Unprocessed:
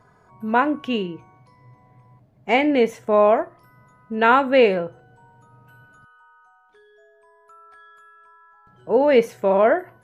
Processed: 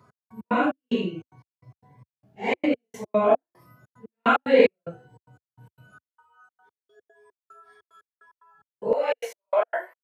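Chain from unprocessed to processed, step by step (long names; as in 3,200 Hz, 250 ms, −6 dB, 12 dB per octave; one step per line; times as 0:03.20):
random phases in long frames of 200 ms
gate pattern "x..x.xx..xxx." 148 BPM −60 dB
high-pass filter 83 Hz 24 dB per octave, from 0:08.93 610 Hz
phaser whose notches keep moving one way rising 1.9 Hz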